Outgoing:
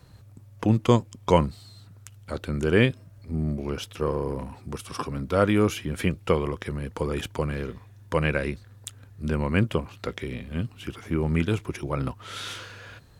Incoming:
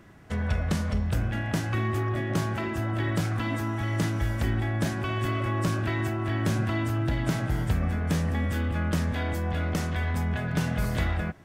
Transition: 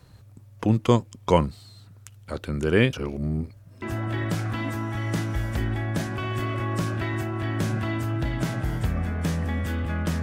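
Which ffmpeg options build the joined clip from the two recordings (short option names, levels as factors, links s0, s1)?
-filter_complex "[0:a]apad=whole_dur=10.22,atrim=end=10.22,asplit=2[s0][s1];[s0]atrim=end=2.932[s2];[s1]atrim=start=2.928:end=3.822,asetpts=PTS-STARTPTS,areverse[s3];[1:a]atrim=start=2.678:end=9.08[s4];[s2][s3]acrossfade=d=0.004:c1=hsin:c2=hsin[s5];[s5][s4]acrossfade=d=0.004:c1=hsin:c2=hsin"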